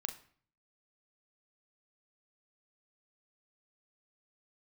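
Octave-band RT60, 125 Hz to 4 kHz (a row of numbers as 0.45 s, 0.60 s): 0.75 s, 0.65 s, 0.50 s, 0.50 s, 0.50 s, 0.40 s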